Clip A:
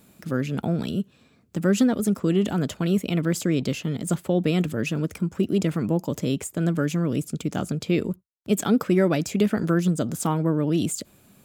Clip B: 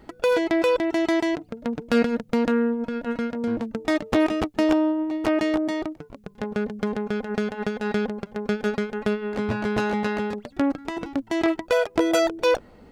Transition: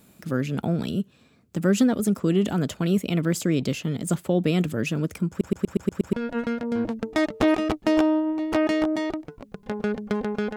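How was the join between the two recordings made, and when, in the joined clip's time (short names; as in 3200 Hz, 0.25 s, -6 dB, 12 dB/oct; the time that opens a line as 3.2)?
clip A
5.29 stutter in place 0.12 s, 7 plays
6.13 switch to clip B from 2.85 s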